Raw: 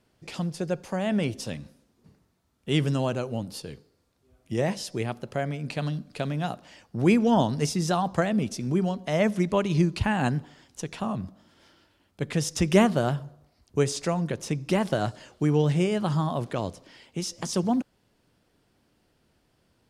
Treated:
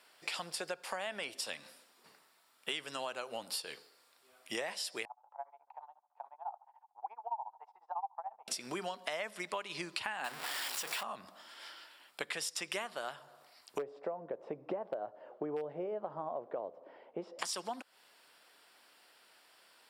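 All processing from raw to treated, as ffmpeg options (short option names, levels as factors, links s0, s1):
-filter_complex "[0:a]asettb=1/sr,asplit=3[s0][s1][s2];[s0]atrim=end=5.054[s3];[s1]atrim=start=5.05:end=8.48,asetpts=PTS-STARTPTS,afade=t=in:d=0.004:c=qsin,afade=t=out:st=3.426:d=0.004:c=qsin,tremolo=f=14:d=0.95,asuperpass=centerf=850:order=4:qfactor=4.9[s4];[s2]atrim=start=8.476[s5];[s3][s4]acrossfade=d=0.004:c1=hsin:c2=qsin[s6];[s6][s5]acrossfade=d=0.004:c1=qsin:c2=hsin,asettb=1/sr,asplit=3[s7][s8][s9];[s7]atrim=end=10.244[s10];[s8]atrim=start=10.24:end=11.03,asetpts=PTS-STARTPTS,afade=t=in:d=0.004:c=qsin,afade=t=out:st=0.786:d=0.004:c=qsin,aeval=exprs='val(0)+0.5*0.0473*sgn(val(0))':c=same,bandreject=f=60:t=h:w=6,bandreject=f=120:t=h:w=6,bandreject=f=180:t=h:w=6,bandreject=f=240:t=h:w=6,bandreject=f=300:t=h:w=6,bandreject=f=360:t=h:w=6,bandreject=f=420:t=h:w=6,bandreject=f=480:t=h:w=6[s11];[s9]atrim=start=11.026[s12];[s10][s11]acrossfade=d=0.004:c1=hsin:c2=qsin[s13];[s13][s12]acrossfade=d=0.004:c1=qsin:c2=hsin,asettb=1/sr,asplit=3[s14][s15][s16];[s14]atrim=end=13.784[s17];[s15]atrim=start=13.78:end=17.39,asetpts=PTS-STARTPTS,afade=t=in:d=0.004:c=qsin,afade=t=out:st=3.606:d=0.004:c=qsin,lowpass=f=560:t=q:w=1.9,asoftclip=type=hard:threshold=0.316[s18];[s16]atrim=start=17.386[s19];[s17][s18]acrossfade=d=0.004:c1=hsin:c2=qsin[s20];[s20][s19]acrossfade=d=0.004:c1=qsin:c2=hsin,highpass=930,bandreject=f=6300:w=5.1,acompressor=threshold=0.00501:ratio=12,volume=3.35"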